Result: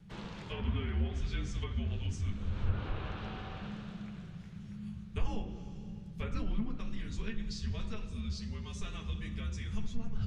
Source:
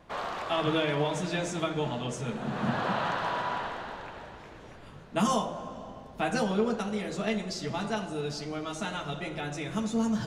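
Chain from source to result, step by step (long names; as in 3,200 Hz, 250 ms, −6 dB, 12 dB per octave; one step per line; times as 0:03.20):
treble cut that deepens with the level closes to 2,300 Hz, closed at −24 dBFS
guitar amp tone stack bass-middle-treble 10-0-1
frequency shifter −220 Hz
level +15.5 dB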